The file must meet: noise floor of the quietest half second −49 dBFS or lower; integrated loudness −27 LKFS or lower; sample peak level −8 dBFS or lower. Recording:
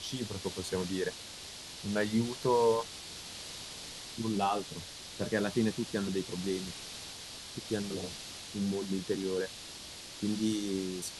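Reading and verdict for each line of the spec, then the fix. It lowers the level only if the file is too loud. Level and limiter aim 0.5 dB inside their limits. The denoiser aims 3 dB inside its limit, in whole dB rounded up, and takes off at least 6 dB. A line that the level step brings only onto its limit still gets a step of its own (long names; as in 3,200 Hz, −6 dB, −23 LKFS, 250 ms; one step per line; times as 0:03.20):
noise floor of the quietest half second −46 dBFS: out of spec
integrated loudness −35.0 LKFS: in spec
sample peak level −17.5 dBFS: in spec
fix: broadband denoise 6 dB, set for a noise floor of −46 dBFS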